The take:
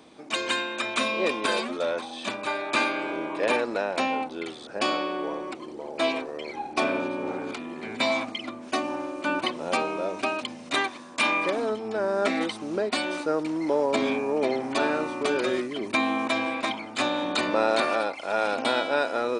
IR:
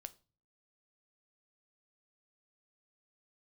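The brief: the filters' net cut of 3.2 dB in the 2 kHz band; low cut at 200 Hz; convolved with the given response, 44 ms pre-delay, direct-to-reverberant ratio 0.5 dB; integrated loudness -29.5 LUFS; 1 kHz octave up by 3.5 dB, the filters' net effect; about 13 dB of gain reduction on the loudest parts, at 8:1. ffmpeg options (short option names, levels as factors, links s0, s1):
-filter_complex "[0:a]highpass=200,equalizer=f=1000:t=o:g=6,equalizer=f=2000:t=o:g=-6.5,acompressor=threshold=0.0251:ratio=8,asplit=2[s0][s1];[1:a]atrim=start_sample=2205,adelay=44[s2];[s1][s2]afir=irnorm=-1:irlink=0,volume=1.78[s3];[s0][s3]amix=inputs=2:normalize=0,volume=1.5"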